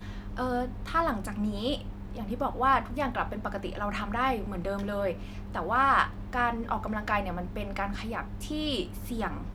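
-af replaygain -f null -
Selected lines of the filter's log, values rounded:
track_gain = +10.3 dB
track_peak = 0.226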